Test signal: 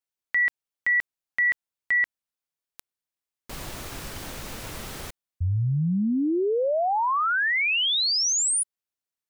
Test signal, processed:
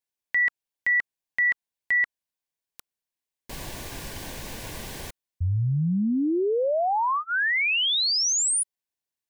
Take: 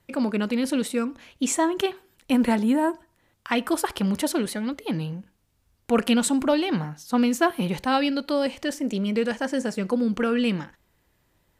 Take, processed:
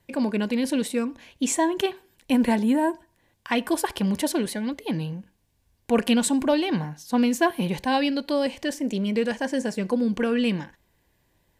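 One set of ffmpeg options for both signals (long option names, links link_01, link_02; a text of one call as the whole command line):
ffmpeg -i in.wav -af "asuperstop=centerf=1300:order=4:qfactor=5.4" out.wav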